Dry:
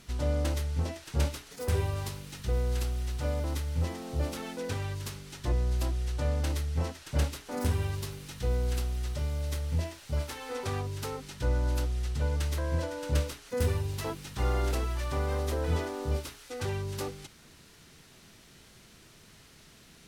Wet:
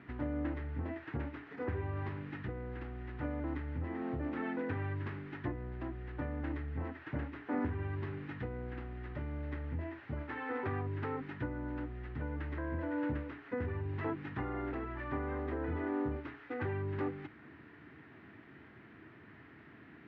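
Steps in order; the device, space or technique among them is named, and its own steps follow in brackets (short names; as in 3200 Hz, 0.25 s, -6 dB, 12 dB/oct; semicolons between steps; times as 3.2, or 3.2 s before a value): bass amplifier (compressor 5:1, threshold -34 dBFS, peak gain reduction 11 dB; speaker cabinet 83–2100 Hz, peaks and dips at 170 Hz -5 dB, 300 Hz +10 dB, 540 Hz -6 dB, 1800 Hz +6 dB); gain +1.5 dB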